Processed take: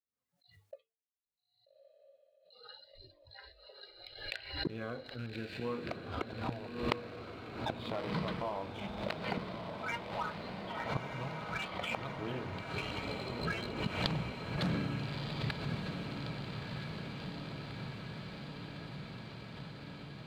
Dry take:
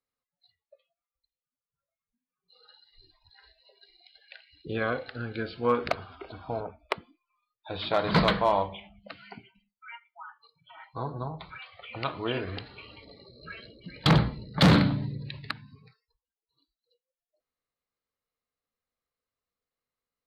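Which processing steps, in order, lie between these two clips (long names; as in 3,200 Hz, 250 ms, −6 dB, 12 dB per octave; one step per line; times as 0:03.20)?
loose part that buzzes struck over −33 dBFS, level −29 dBFS
high-pass filter 100 Hz 6 dB per octave
downward expander −54 dBFS
low-shelf EQ 410 Hz +11 dB
mains-hum notches 50/100/150/200/250/300/350/400/450 Hz
leveller curve on the samples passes 1
gate with flip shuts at −24 dBFS, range −24 dB
downward compressor 2 to 1, threshold −45 dBFS, peak gain reduction 11.5 dB
feedback delay with all-pass diffusion 1,269 ms, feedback 76%, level −5.5 dB
background raised ahead of every attack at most 80 dB per second
level +7.5 dB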